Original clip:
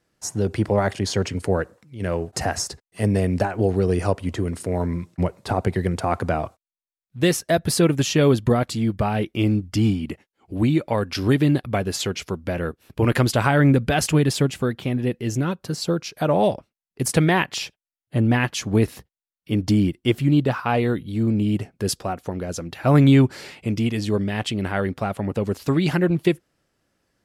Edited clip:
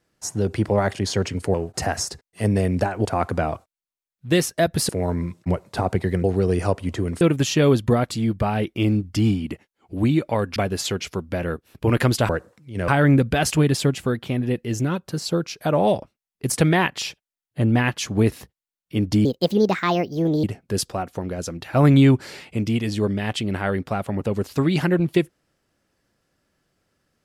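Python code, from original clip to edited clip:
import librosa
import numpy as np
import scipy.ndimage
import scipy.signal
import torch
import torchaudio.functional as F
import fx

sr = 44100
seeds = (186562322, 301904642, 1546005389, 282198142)

y = fx.edit(x, sr, fx.move(start_s=1.54, length_s=0.59, to_s=13.44),
    fx.swap(start_s=3.64, length_s=0.97, other_s=5.96, other_length_s=1.84),
    fx.cut(start_s=11.15, length_s=0.56),
    fx.speed_span(start_s=19.81, length_s=1.73, speed=1.46), tone=tone)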